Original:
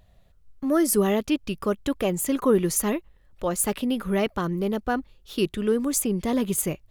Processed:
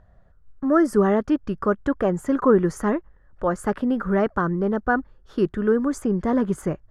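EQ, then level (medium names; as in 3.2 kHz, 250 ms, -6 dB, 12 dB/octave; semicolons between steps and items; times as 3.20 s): distance through air 84 m; resonant high shelf 2 kHz -8 dB, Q 3; peaking EQ 3.9 kHz -7 dB 0.23 oct; +3.0 dB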